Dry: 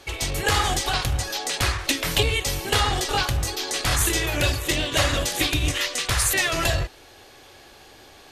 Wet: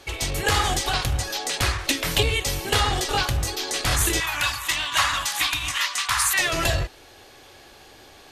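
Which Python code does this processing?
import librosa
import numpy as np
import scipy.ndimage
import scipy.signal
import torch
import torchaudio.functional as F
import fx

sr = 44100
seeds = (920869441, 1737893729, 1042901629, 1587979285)

y = fx.low_shelf_res(x, sr, hz=700.0, db=-13.0, q=3.0, at=(4.2, 6.39))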